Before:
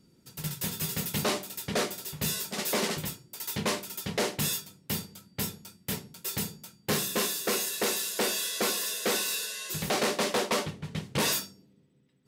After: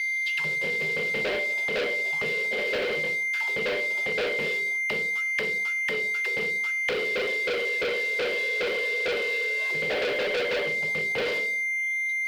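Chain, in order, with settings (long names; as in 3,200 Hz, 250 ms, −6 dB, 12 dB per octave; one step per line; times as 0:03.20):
envelope filter 500–4,300 Hz, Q 7, down, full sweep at −32.5 dBFS
on a send at −11.5 dB: convolution reverb RT60 0.50 s, pre-delay 4 ms
on the sum: steady tone 2,100 Hz −53 dBFS
leveller curve on the samples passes 5
flat-topped bell 3,000 Hz +10.5 dB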